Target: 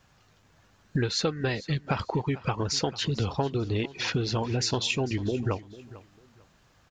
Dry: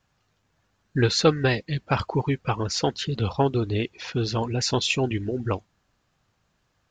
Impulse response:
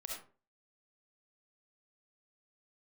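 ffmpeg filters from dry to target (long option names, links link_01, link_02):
-af "acompressor=threshold=-34dB:ratio=6,aecho=1:1:447|894:0.126|0.0315,volume=8.5dB"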